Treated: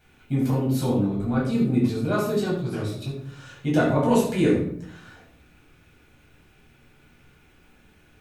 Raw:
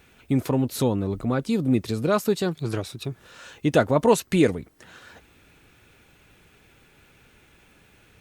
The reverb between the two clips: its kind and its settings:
rectangular room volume 1,000 cubic metres, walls furnished, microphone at 7.8 metres
level −11 dB

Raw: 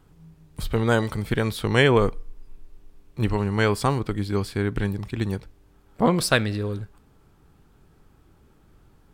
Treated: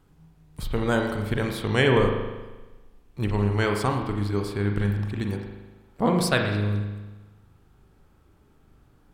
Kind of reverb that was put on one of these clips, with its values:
spring reverb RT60 1.2 s, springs 39 ms, chirp 25 ms, DRR 3 dB
level −3.5 dB

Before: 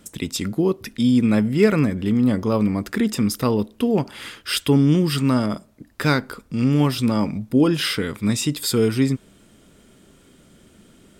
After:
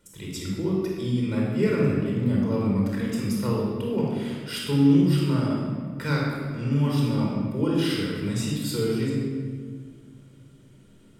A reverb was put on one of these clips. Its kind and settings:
rectangular room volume 2,400 cubic metres, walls mixed, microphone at 4.7 metres
level −14 dB

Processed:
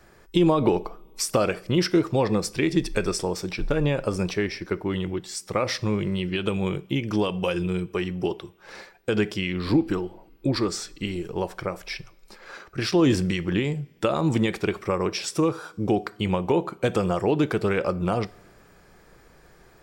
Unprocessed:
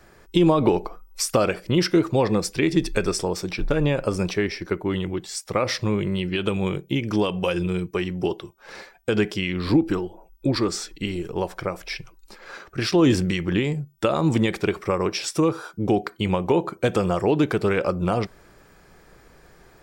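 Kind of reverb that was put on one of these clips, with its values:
coupled-rooms reverb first 0.51 s, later 3.4 s, from −20 dB, DRR 18.5 dB
level −2 dB

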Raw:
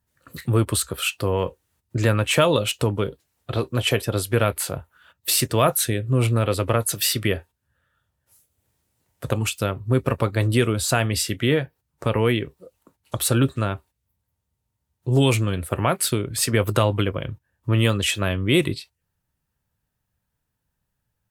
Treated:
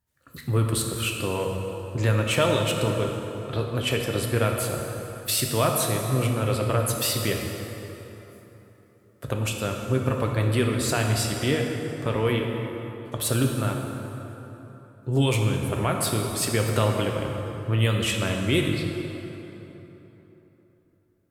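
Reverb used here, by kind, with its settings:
dense smooth reverb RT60 3.6 s, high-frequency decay 0.6×, DRR 1.5 dB
level −5 dB

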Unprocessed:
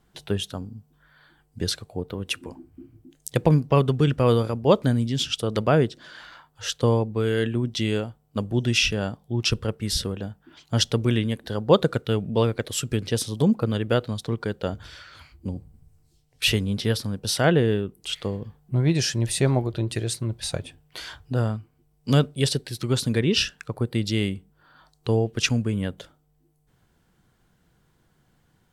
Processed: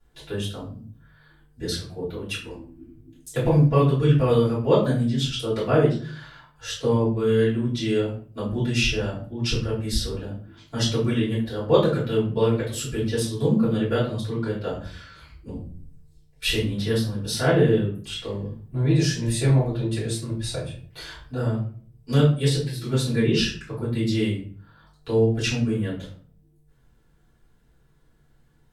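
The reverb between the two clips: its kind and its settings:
rectangular room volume 38 cubic metres, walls mixed, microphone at 3 metres
level −15 dB

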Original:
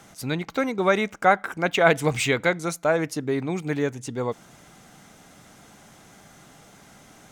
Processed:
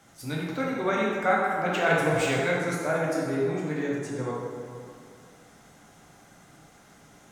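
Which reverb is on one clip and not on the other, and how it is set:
dense smooth reverb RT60 2.2 s, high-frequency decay 0.5×, DRR −5 dB
level −9.5 dB

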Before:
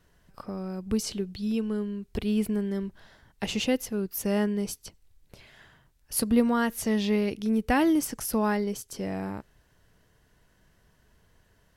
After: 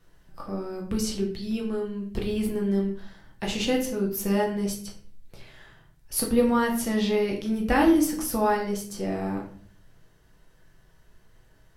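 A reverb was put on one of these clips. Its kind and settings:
rectangular room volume 59 cubic metres, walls mixed, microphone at 0.77 metres
level −1 dB

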